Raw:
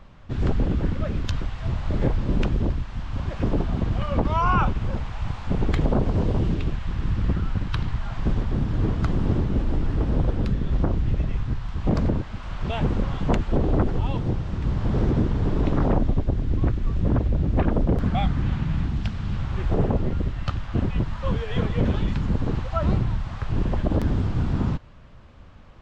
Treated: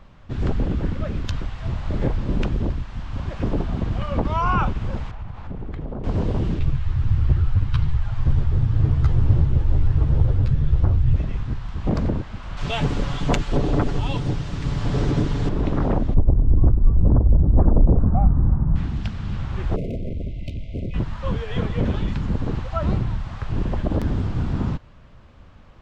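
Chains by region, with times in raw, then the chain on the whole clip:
5.11–6.04 s: low-pass 1.4 kHz 6 dB/octave + compression 3:1, threshold -29 dBFS
6.59–11.16 s: resonant low shelf 160 Hz +7 dB, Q 3 + three-phase chorus
12.57–15.49 s: treble shelf 2.6 kHz +12 dB + comb 7 ms, depth 44%
16.14–18.76 s: low-pass 1.1 kHz 24 dB/octave + bass shelf 85 Hz +11 dB
19.76–20.94 s: treble shelf 4.1 kHz -12 dB + hard clipper -24 dBFS + brick-wall FIR band-stop 700–2000 Hz
whole clip: none

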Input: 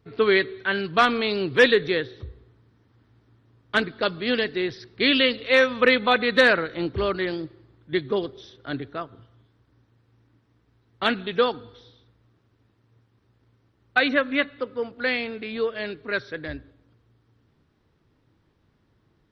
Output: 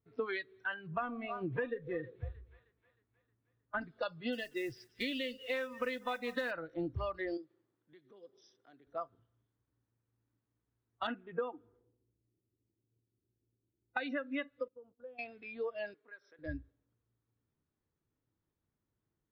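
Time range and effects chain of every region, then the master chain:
0.74–3.81 s: distance through air 440 m + two-band feedback delay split 620 Hz, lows 127 ms, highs 312 ms, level -14.5 dB
4.32–6.51 s: thinning echo 190 ms, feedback 65%, high-pass 940 Hz, level -16.5 dB + modulation noise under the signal 20 dB
7.37–8.87 s: high-pass 210 Hz + compression 2.5:1, threshold -42 dBFS
11.07–13.97 s: low-pass 2.8 kHz 24 dB/octave + level-controlled noise filter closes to 440 Hz, open at -19.5 dBFS + peaking EQ 350 Hz +8.5 dB 0.39 oct
14.68–15.19 s: expander -38 dBFS + compression 2.5:1, threshold -39 dBFS + boxcar filter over 21 samples
15.94–16.39 s: high-pass 460 Hz + compression 5:1, threshold -35 dBFS + treble shelf 3.9 kHz -9.5 dB
whole clip: spectral noise reduction 18 dB; compression 10:1, threshold -30 dBFS; treble shelf 4.3 kHz -10.5 dB; trim -3 dB

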